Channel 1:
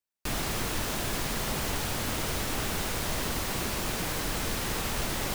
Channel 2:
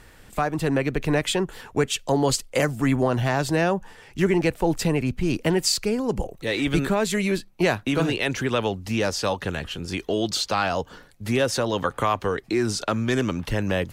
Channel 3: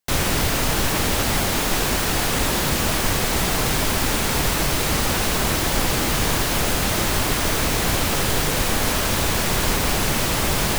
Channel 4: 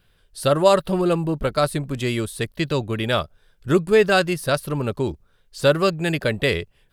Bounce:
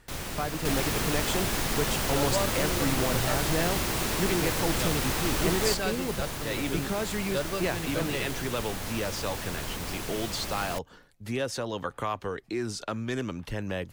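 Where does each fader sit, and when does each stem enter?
+1.5 dB, -8.5 dB, -15.0 dB, -14.5 dB; 0.40 s, 0.00 s, 0.00 s, 1.70 s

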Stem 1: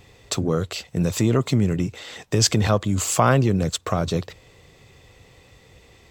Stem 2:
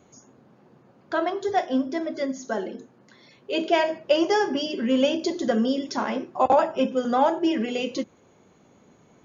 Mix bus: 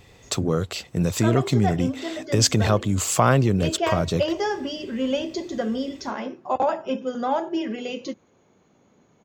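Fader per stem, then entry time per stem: -0.5 dB, -3.5 dB; 0.00 s, 0.10 s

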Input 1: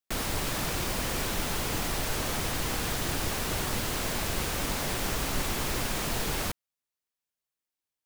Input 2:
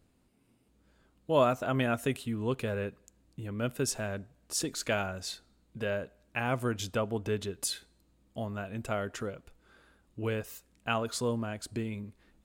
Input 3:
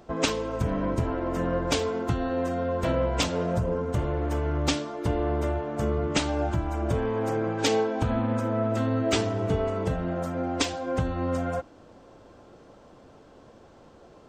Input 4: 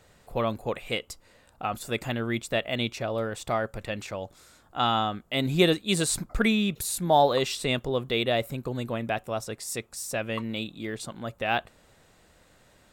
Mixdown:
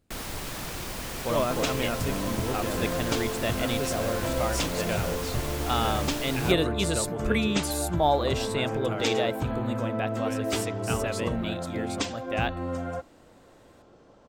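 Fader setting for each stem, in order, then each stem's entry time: -4.5 dB, -2.5 dB, -4.0 dB, -3.0 dB; 0.00 s, 0.00 s, 1.40 s, 0.90 s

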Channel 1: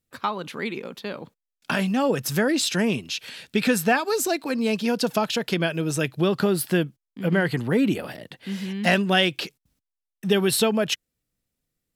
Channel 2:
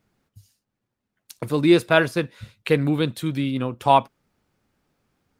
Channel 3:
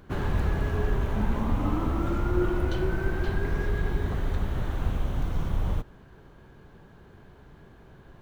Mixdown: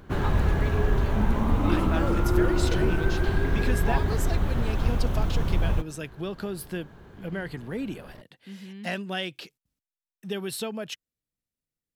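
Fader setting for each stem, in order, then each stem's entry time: -11.5 dB, -17.0 dB, +3.0 dB; 0.00 s, 0.00 s, 0.00 s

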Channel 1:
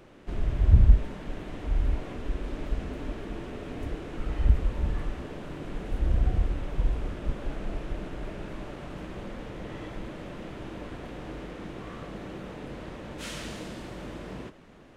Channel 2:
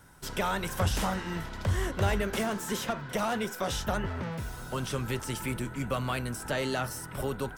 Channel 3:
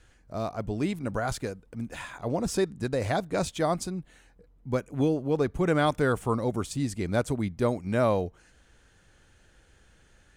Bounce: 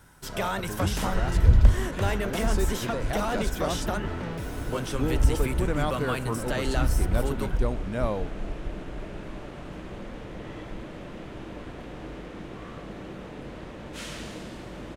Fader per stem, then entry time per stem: 0.0 dB, +0.5 dB, -5.0 dB; 0.75 s, 0.00 s, 0.00 s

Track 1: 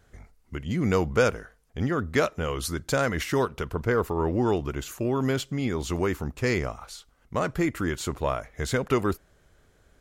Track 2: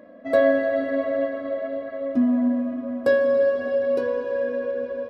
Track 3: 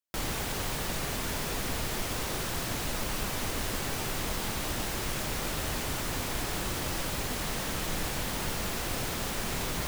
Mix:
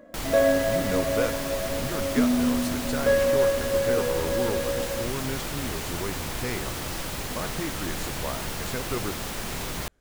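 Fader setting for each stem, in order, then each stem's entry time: -7.5 dB, -2.5 dB, +0.5 dB; 0.00 s, 0.00 s, 0.00 s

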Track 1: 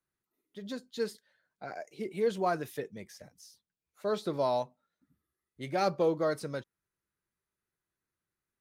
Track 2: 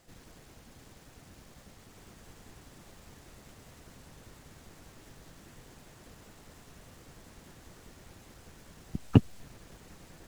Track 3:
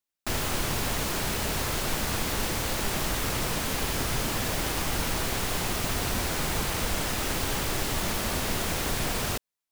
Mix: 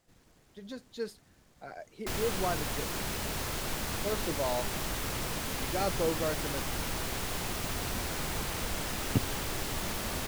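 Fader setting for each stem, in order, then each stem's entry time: -3.5 dB, -9.0 dB, -6.0 dB; 0.00 s, 0.00 s, 1.80 s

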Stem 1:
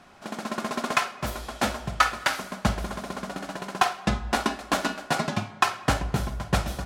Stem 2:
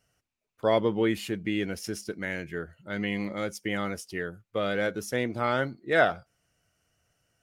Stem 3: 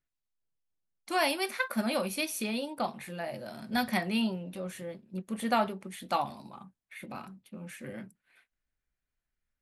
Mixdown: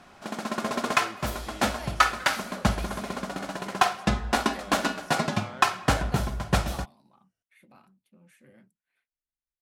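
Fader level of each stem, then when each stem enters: +0.5 dB, -17.0 dB, -14.5 dB; 0.00 s, 0.00 s, 0.60 s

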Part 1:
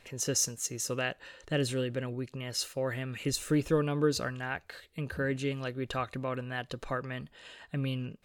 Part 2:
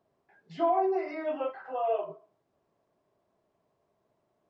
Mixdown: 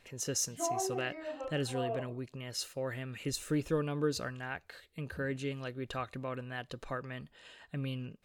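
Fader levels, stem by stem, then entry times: -4.5 dB, -9.0 dB; 0.00 s, 0.00 s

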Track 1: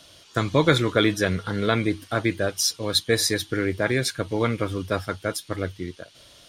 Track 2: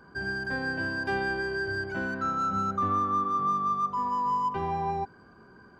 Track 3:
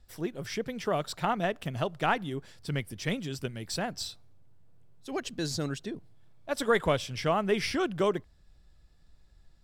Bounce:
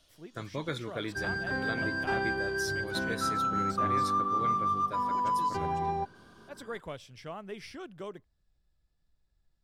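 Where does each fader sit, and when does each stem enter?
-16.5 dB, -1.5 dB, -14.5 dB; 0.00 s, 1.00 s, 0.00 s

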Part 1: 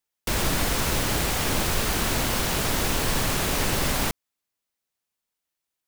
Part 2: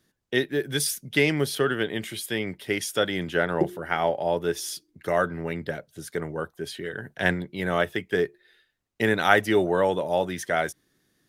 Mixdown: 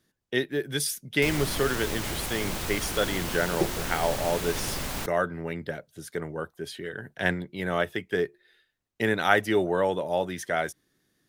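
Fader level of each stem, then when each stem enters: -8.0 dB, -2.5 dB; 0.95 s, 0.00 s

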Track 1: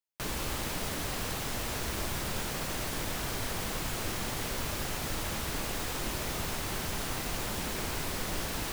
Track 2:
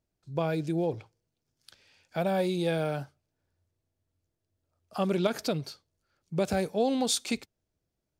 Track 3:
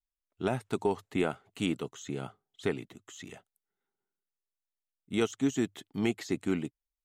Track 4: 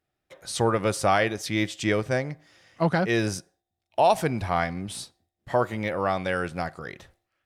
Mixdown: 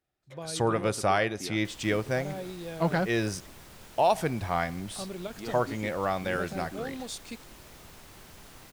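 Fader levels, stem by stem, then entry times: -15.5 dB, -11.0 dB, -12.5 dB, -3.5 dB; 1.45 s, 0.00 s, 0.25 s, 0.00 s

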